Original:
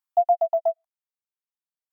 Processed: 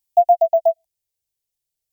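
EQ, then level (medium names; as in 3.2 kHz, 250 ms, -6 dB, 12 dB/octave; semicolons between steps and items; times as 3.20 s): tone controls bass +15 dB, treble +6 dB; static phaser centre 510 Hz, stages 4; +7.5 dB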